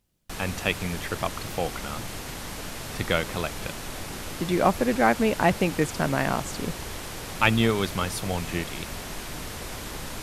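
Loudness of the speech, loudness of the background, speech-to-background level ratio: -26.5 LUFS, -35.5 LUFS, 9.0 dB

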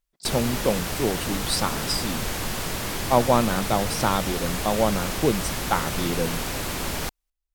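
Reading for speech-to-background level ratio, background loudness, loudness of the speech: 3.0 dB, -28.5 LUFS, -25.5 LUFS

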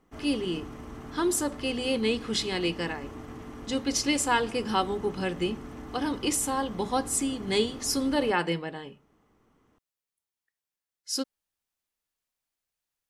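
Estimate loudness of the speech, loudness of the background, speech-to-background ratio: -28.5 LUFS, -42.5 LUFS, 14.0 dB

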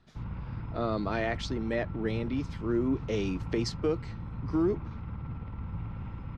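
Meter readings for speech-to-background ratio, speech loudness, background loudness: 7.5 dB, -32.0 LUFS, -39.5 LUFS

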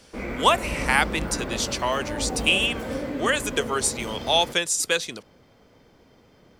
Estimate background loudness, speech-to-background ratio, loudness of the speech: -32.0 LUFS, 8.5 dB, -23.5 LUFS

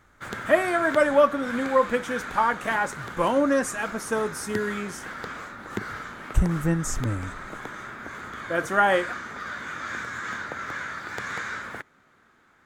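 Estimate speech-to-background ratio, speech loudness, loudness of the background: 10.5 dB, -24.5 LUFS, -35.0 LUFS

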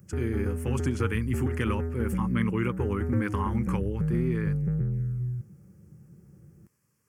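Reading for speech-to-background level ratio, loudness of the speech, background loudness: -0.5 dB, -31.5 LUFS, -31.0 LUFS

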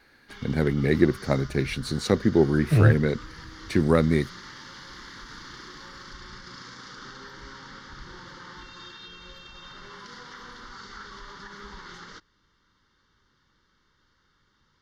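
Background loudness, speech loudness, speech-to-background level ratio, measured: -43.0 LUFS, -23.5 LUFS, 19.5 dB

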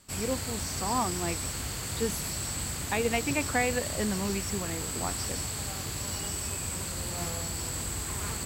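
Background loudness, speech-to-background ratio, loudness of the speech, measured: -32.5 LUFS, -0.5 dB, -33.0 LUFS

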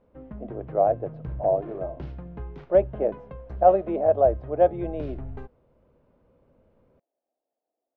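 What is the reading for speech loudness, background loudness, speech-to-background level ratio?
-23.5 LUFS, -39.5 LUFS, 16.0 dB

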